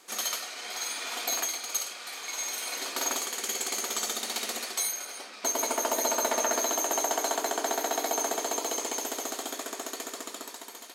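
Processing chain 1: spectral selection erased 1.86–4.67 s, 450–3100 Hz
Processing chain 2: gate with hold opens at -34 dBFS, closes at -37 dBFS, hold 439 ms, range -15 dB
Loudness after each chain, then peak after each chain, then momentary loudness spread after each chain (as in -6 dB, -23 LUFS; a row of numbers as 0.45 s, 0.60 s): -30.0 LUFS, -30.0 LUFS; -14.0 dBFS, -14.0 dBFS; 10 LU, 10 LU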